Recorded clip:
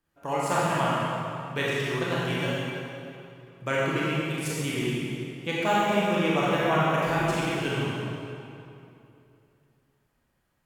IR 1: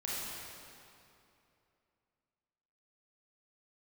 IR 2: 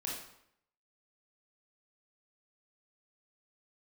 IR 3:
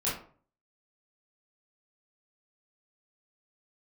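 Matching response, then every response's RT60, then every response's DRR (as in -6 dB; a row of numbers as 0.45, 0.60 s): 1; 2.8, 0.75, 0.45 s; -7.5, -4.0, -9.0 dB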